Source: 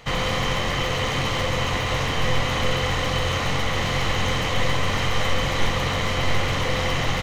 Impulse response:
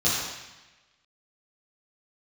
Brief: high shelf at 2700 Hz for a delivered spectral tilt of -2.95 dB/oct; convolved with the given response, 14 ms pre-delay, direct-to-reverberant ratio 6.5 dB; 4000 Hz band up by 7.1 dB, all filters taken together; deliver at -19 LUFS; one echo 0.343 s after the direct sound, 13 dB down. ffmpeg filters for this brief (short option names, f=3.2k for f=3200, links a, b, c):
-filter_complex "[0:a]highshelf=f=2.7k:g=4.5,equalizer=f=4k:t=o:g=6,aecho=1:1:343:0.224,asplit=2[a][b];[1:a]atrim=start_sample=2205,adelay=14[c];[b][c]afir=irnorm=-1:irlink=0,volume=-20.5dB[d];[a][d]amix=inputs=2:normalize=0,volume=-0.5dB"